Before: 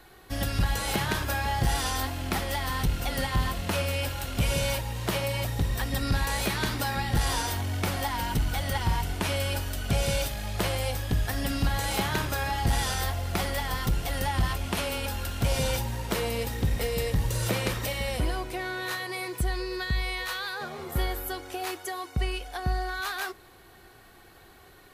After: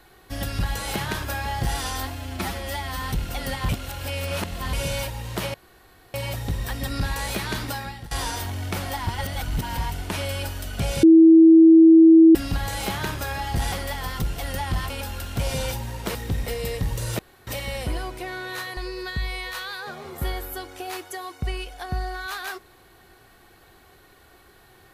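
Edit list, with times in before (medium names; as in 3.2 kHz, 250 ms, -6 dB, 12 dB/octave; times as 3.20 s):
2.15–2.73 s: stretch 1.5×
3.40–4.44 s: reverse
5.25 s: insert room tone 0.60 s
6.79–7.22 s: fade out, to -23.5 dB
8.18–8.89 s: reverse
10.14–11.46 s: bleep 325 Hz -7.5 dBFS
12.83–13.39 s: delete
14.57–14.95 s: delete
16.20–16.48 s: delete
17.52–17.80 s: room tone
19.10–19.51 s: delete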